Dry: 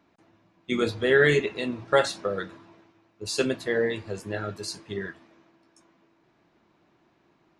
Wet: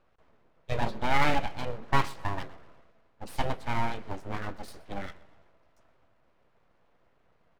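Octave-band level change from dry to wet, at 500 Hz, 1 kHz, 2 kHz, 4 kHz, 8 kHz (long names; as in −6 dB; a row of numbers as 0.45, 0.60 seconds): −12.5, +4.5, −7.0, −6.5, −11.0 decibels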